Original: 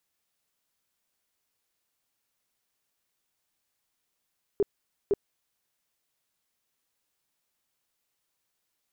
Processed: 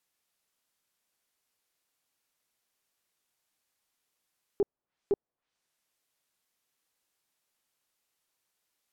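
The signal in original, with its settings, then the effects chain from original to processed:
tone bursts 404 Hz, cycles 11, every 0.51 s, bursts 2, -19.5 dBFS
tracing distortion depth 0.059 ms; treble ducked by the level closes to 820 Hz, closed at -35.5 dBFS; low shelf 170 Hz -5.5 dB

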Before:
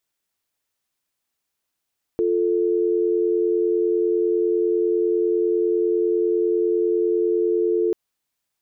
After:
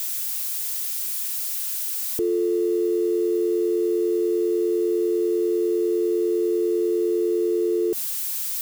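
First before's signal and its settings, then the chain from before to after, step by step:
call progress tone dial tone, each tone -20 dBFS 5.74 s
switching spikes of -24 dBFS; low shelf 480 Hz +9.5 dB; limiter -16 dBFS

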